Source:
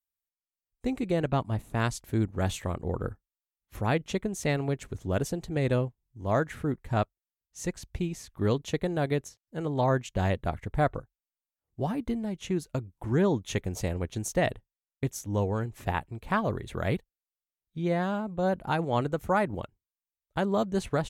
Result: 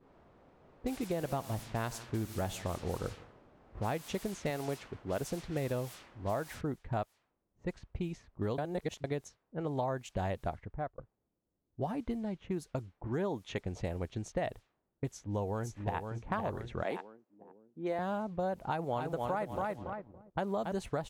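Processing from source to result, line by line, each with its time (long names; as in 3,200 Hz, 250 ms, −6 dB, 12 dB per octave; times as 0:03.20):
0:01.12–0:03.80: echo machine with several playback heads 81 ms, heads first and second, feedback 42%, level −21.5 dB
0:04.50–0:05.21: low-shelf EQ 120 Hz −11 dB
0:06.61: noise floor change −43 dB −64 dB
0:08.58–0:09.04: reverse
0:10.43–0:10.98: fade out
0:13.07–0:13.66: low-shelf EQ 120 Hz −9 dB
0:15.10–0:15.99: delay throw 510 ms, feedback 55%, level −6.5 dB
0:16.83–0:17.99: high-pass filter 230 Hz 24 dB per octave
0:18.62–0:20.72: feedback echo at a low word length 282 ms, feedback 35%, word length 9 bits, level −4.5 dB
whole clip: low-pass that shuts in the quiet parts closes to 300 Hz, open at −25.5 dBFS; dynamic equaliser 740 Hz, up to +6 dB, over −40 dBFS, Q 1.2; downward compressor, threshold −27 dBFS; level −4 dB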